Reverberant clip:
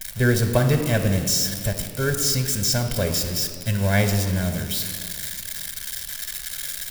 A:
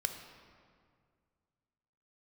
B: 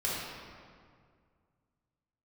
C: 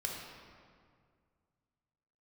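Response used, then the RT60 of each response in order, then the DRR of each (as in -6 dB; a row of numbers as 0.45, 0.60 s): A; 2.0, 2.0, 2.0 s; 5.0, -8.0, -2.0 dB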